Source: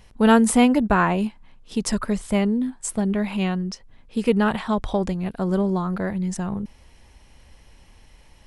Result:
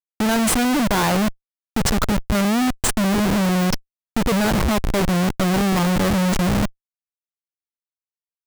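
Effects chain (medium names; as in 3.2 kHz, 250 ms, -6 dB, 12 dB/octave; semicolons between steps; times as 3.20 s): Schmitt trigger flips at -28.5 dBFS; trim +5 dB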